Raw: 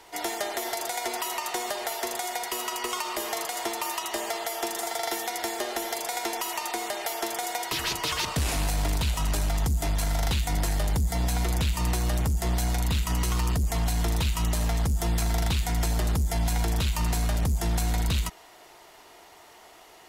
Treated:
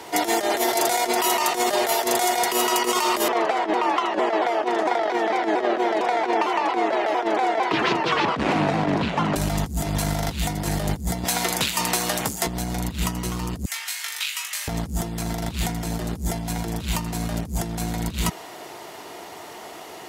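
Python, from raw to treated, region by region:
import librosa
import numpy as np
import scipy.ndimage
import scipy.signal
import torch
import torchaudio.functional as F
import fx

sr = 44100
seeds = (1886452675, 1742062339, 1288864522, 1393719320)

y = fx.chain(x, sr, fx.bandpass_edges(low_hz=200.0, high_hz=2200.0),
    fx.vibrato_shape(shape='saw_down', rate_hz=4.4, depth_cents=160.0), at=(3.28, 9.36))
y = fx.chain(y, sr, fx.highpass(hz=1100.0, slope=6),
    fx.doubler(ms=21.0, db=-13.5), at=(11.24, 12.47))
y = fx.chain(y, sr, fx.ladder_highpass(hz=1500.0, resonance_pct=30),
    fx.room_flutter(wall_m=3.4, rt60_s=0.24), at=(13.65, 14.68))
y = scipy.signal.sosfilt(scipy.signal.butter(2, 140.0, 'highpass', fs=sr, output='sos'), y)
y = fx.low_shelf(y, sr, hz=470.0, db=9.0)
y = fx.over_compress(y, sr, threshold_db=-30.0, ratio=-0.5)
y = F.gain(torch.from_numpy(y), 7.5).numpy()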